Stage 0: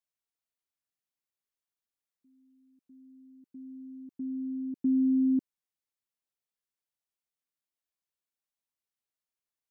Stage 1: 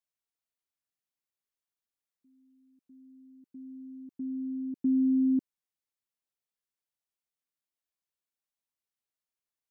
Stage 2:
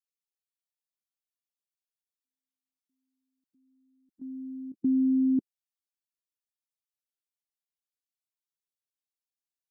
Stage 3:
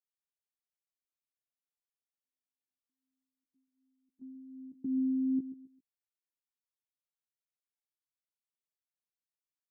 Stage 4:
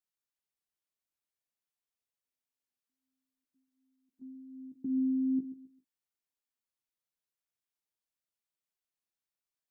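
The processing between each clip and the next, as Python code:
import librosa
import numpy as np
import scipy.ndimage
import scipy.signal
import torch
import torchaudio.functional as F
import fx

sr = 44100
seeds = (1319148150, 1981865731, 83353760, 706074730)

y1 = x
y2 = fx.bin_expand(y1, sr, power=2.0)
y2 = fx.level_steps(y2, sr, step_db=15)
y2 = y2 * librosa.db_to_amplitude(6.5)
y3 = fx.chorus_voices(y2, sr, voices=2, hz=0.48, base_ms=12, depth_ms=4.0, mix_pct=35)
y3 = fx.echo_feedback(y3, sr, ms=133, feedback_pct=30, wet_db=-13.5)
y3 = y3 * librosa.db_to_amplitude(-7.0)
y4 = fx.doubler(y3, sr, ms=39.0, db=-13)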